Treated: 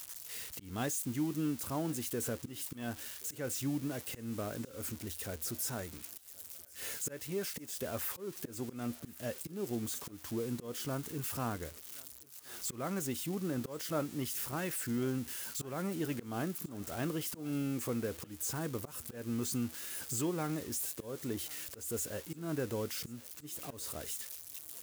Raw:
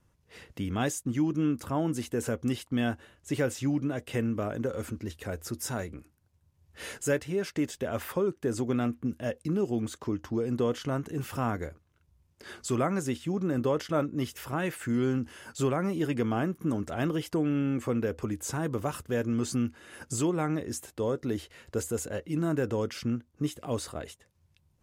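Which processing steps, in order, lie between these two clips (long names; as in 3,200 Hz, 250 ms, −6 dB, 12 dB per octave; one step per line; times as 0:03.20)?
spike at every zero crossing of −27 dBFS
volume swells 201 ms
feedback echo with a high-pass in the loop 1,078 ms, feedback 58%, high-pass 380 Hz, level −22.5 dB
level −7 dB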